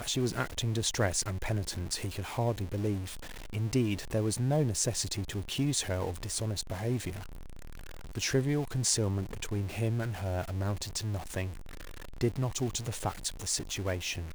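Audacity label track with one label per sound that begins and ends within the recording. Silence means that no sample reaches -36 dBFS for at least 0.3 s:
3.530000	7.190000	sound
8.150000	11.510000	sound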